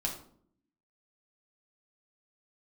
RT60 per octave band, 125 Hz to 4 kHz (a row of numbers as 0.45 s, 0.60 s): 0.85 s, 0.95 s, 0.70 s, 0.50 s, 0.40 s, 0.35 s